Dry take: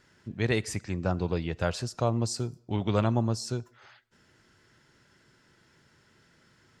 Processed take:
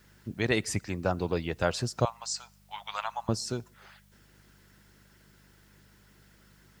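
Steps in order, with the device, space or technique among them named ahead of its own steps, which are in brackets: 2.05–3.29 elliptic band-pass 840–7500 Hz, stop band 40 dB; harmonic-percussive split harmonic -8 dB; video cassette with head-switching buzz (buzz 50 Hz, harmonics 4, -65 dBFS -2 dB/oct; white noise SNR 34 dB); gain +3 dB

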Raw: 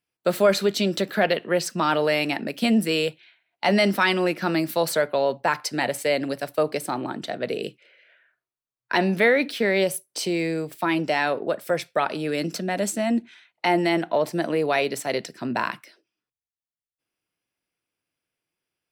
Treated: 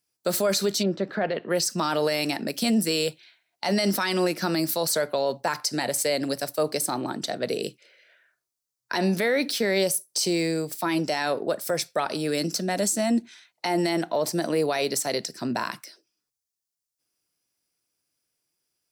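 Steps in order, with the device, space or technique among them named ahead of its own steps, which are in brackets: over-bright horn tweeter (resonant high shelf 3900 Hz +9 dB, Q 1.5; limiter -15 dBFS, peak gain reduction 9.5 dB); 0.82–1.49 LPF 1500 Hz -> 2500 Hz 12 dB/oct

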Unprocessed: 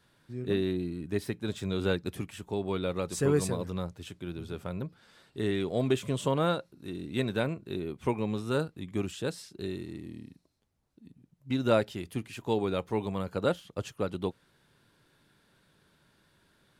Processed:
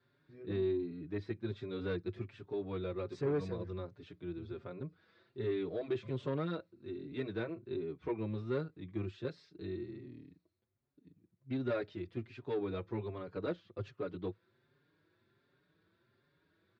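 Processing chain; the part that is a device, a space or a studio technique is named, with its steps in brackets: barber-pole flanger into a guitar amplifier (endless flanger 5.3 ms +1.3 Hz; soft clip -24.5 dBFS, distortion -14 dB; speaker cabinet 92–4000 Hz, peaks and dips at 100 Hz +7 dB, 200 Hz -4 dB, 360 Hz +7 dB, 840 Hz -6 dB, 3000 Hz -8 dB); gain -4.5 dB

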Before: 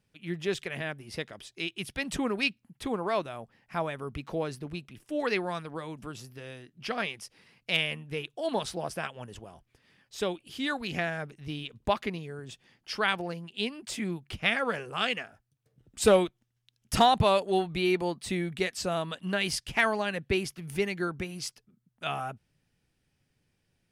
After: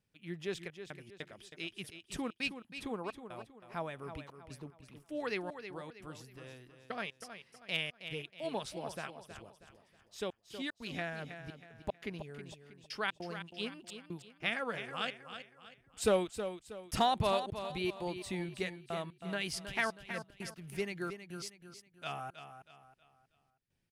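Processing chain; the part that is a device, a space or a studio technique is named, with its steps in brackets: trance gate with a delay (step gate "xxxxxxx..xx." 150 bpm -60 dB; feedback echo 0.319 s, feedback 37%, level -10 dB); gain -8 dB

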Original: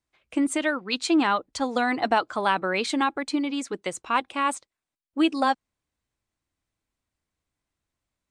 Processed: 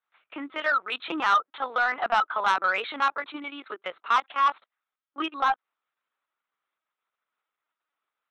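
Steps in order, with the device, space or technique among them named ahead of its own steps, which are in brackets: 3.97–4.37 HPF 250 Hz 12 dB/oct; talking toy (LPC vocoder at 8 kHz pitch kept; HPF 610 Hz 12 dB/oct; bell 1300 Hz +10.5 dB 0.55 oct; soft clip -14 dBFS, distortion -14 dB)

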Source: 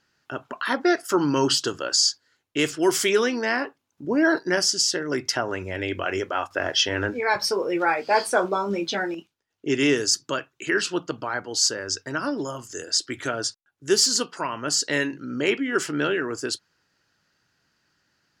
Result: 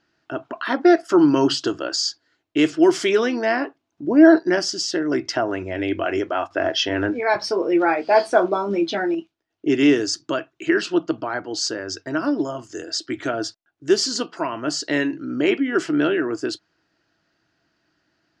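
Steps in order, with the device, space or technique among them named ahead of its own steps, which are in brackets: inside a cardboard box (LPF 5100 Hz 12 dB/oct; small resonant body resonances 320/660 Hz, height 11 dB, ringing for 45 ms)

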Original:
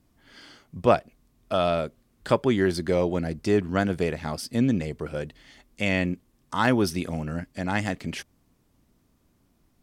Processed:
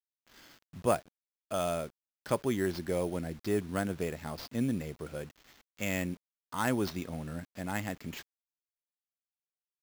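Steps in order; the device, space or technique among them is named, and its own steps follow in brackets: early 8-bit sampler (sample-rate reducer 9600 Hz, jitter 0%; bit-crush 8-bit); gain -8.5 dB

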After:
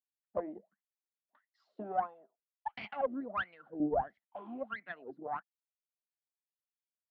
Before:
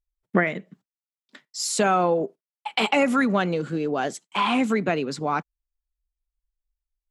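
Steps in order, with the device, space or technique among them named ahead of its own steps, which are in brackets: wah-wah guitar rig (wah 1.5 Hz 310–2200 Hz, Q 11; tube stage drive 23 dB, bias 0.7; speaker cabinet 93–3600 Hz, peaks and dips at 210 Hz +6 dB, 420 Hz -5 dB, 680 Hz +8 dB, 2300 Hz -9 dB); 3.8–4.36 tilt -4 dB/oct

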